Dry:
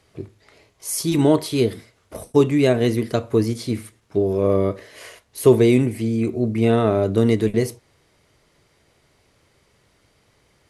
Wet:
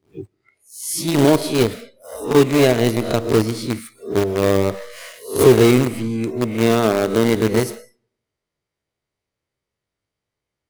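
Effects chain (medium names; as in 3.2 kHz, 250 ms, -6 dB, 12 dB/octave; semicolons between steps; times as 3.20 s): reverse spectral sustain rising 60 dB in 0.51 s; 5.91–7.35 s: high-pass 66 Hz -> 190 Hz 12 dB/octave; in parallel at -11 dB: companded quantiser 2-bit; on the sum: algorithmic reverb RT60 0.89 s, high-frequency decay 0.85×, pre-delay 75 ms, DRR 15 dB; spectral noise reduction 22 dB; trim -2.5 dB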